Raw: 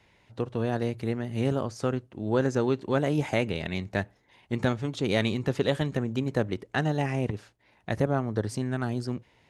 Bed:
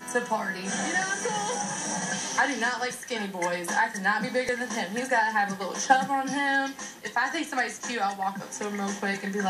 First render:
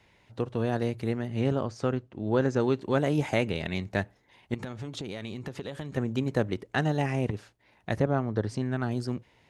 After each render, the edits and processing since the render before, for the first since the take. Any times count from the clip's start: 1.27–2.60 s: distance through air 65 m; 4.54–5.97 s: compression 12:1, threshold -32 dBFS; 7.99–8.91 s: distance through air 74 m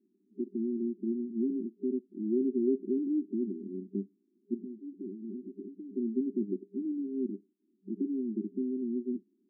FFT band-pass 190–400 Hz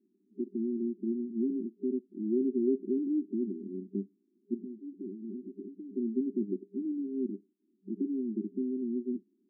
no audible change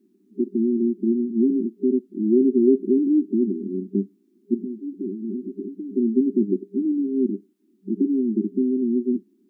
trim +11.5 dB

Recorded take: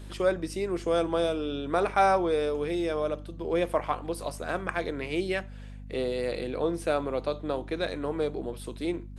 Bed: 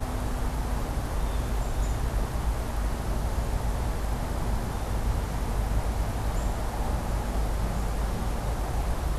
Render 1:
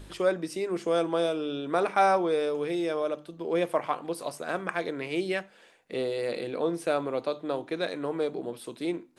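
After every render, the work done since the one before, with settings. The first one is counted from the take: de-hum 50 Hz, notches 5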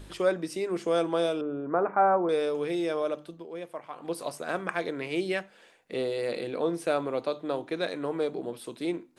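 1.41–2.29 s: low-pass 1.5 kHz 24 dB/octave; 3.31–4.09 s: dip -12 dB, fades 0.16 s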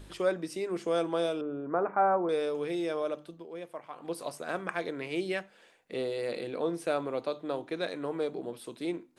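trim -3 dB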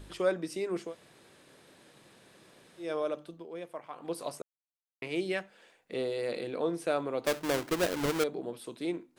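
0.87–2.85 s: room tone, crossfade 0.16 s; 4.42–5.02 s: mute; 7.25–8.24 s: square wave that keeps the level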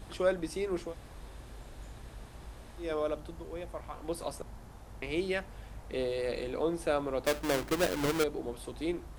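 add bed -19.5 dB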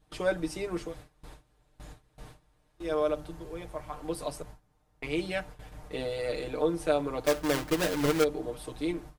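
gate with hold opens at -36 dBFS; comb 6.6 ms, depth 78%

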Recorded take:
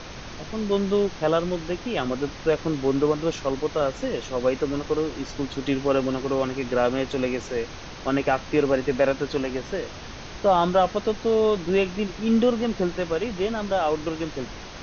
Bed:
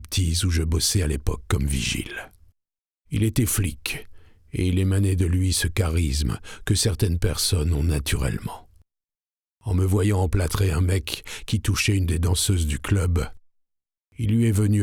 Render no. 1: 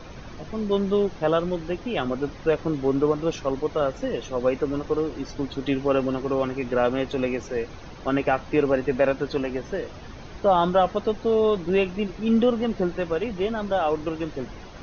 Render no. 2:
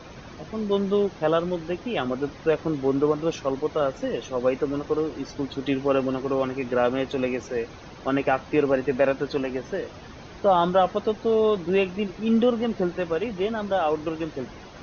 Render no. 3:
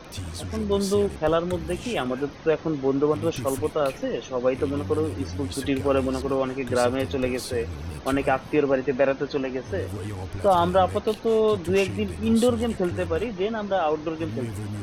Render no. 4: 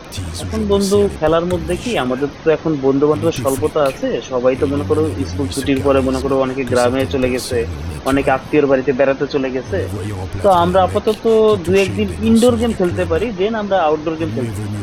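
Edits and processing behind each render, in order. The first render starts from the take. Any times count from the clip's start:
noise reduction 10 dB, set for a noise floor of -39 dBFS
high-pass 91 Hz 6 dB/octave
add bed -12.5 dB
trim +9 dB; peak limiter -2 dBFS, peak gain reduction 3 dB

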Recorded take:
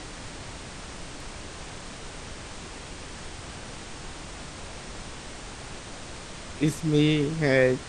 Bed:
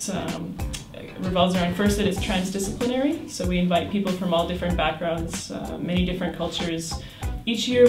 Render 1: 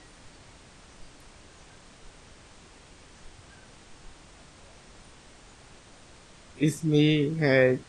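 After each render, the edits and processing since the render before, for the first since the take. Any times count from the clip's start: noise print and reduce 12 dB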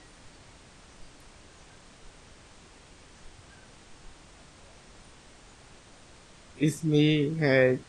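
trim -1 dB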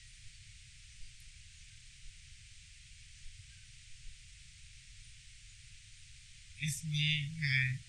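elliptic band-stop 120–2200 Hz, stop band 80 dB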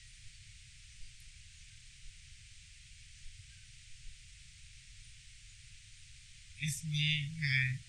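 2.88–4.28 s: band-stop 1 kHz, Q 7.2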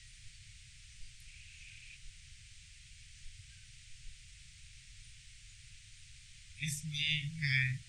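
1.26–1.95 s: peaking EQ 2.5 kHz +7 dB -> +13.5 dB 0.38 oct; 6.63–7.43 s: hum notches 50/100/150/200/250/300/350/400 Hz

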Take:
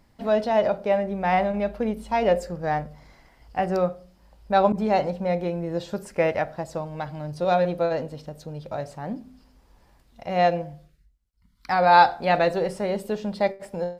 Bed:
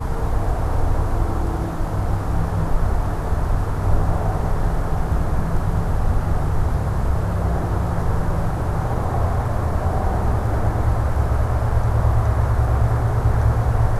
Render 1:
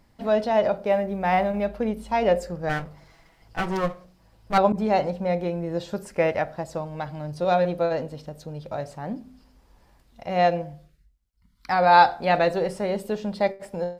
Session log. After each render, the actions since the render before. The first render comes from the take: 0.75–1.66 s: short-mantissa float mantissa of 6-bit; 2.69–4.58 s: comb filter that takes the minimum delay 6.1 ms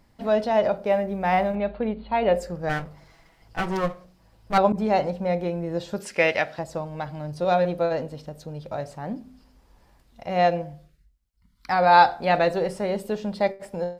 1.55–2.34 s: Chebyshev low-pass 4.5 kHz, order 8; 6.00–6.59 s: frequency weighting D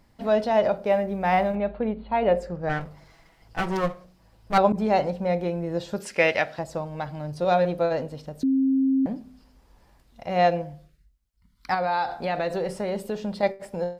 1.57–2.81 s: low-pass 2.5 kHz 6 dB/octave; 8.43–9.06 s: bleep 267 Hz -18 dBFS; 11.74–13.43 s: compression 4:1, threshold -23 dBFS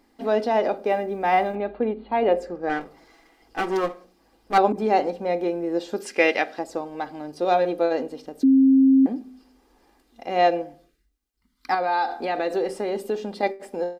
resonant low shelf 180 Hz -11.5 dB, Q 3; comb 2.5 ms, depth 41%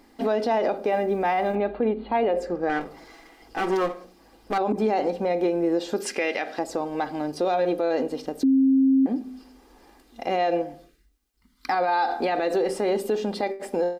in parallel at +1 dB: compression, threshold -29 dBFS, peak gain reduction 15.5 dB; on the sum: peak limiter -15 dBFS, peak gain reduction 11 dB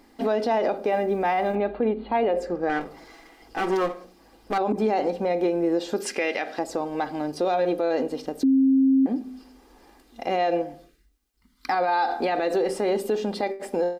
no audible change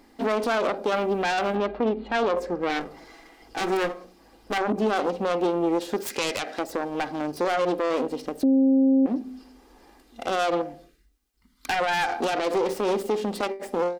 self-modulated delay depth 0.26 ms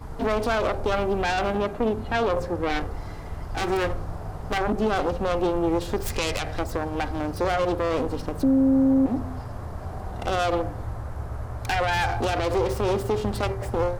add bed -13.5 dB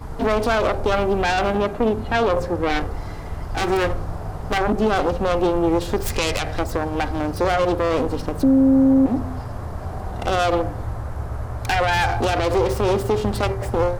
trim +4.5 dB

